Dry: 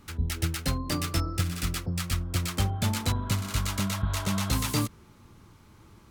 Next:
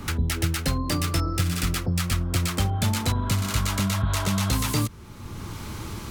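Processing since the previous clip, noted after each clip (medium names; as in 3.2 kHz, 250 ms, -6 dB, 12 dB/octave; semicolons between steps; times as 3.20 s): in parallel at -1.5 dB: peak limiter -23.5 dBFS, peak gain reduction 10 dB; on the sum: three bands compressed up and down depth 70%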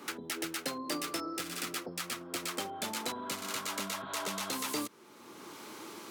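ladder high-pass 260 Hz, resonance 25%; trim -1.5 dB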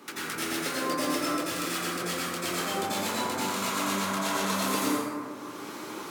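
plate-style reverb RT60 2 s, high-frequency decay 0.35×, pre-delay 75 ms, DRR -9.5 dB; trim -1.5 dB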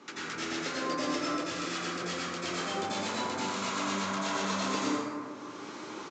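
resampled via 16 kHz; trim -3 dB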